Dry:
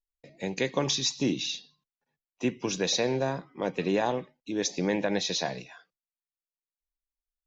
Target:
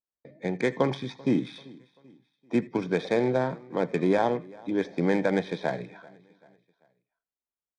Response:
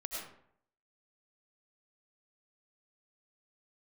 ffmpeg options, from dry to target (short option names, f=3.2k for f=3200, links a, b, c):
-filter_complex "[0:a]acrossover=split=2700[a][b];[b]acompressor=threshold=-44dB:ratio=4:attack=1:release=60[c];[a][c]amix=inputs=2:normalize=0,highpass=120,adynamicsmooth=sensitivity=5:basefreq=1.5k,asuperstop=centerf=2900:order=8:qfactor=5.6,aecho=1:1:373|746|1119:0.0668|0.0301|0.0135,asplit=2[d][e];[1:a]atrim=start_sample=2205,atrim=end_sample=3528[f];[e][f]afir=irnorm=-1:irlink=0,volume=-2dB[g];[d][g]amix=inputs=2:normalize=0,aresample=22050,aresample=44100,asetrate=42336,aresample=44100"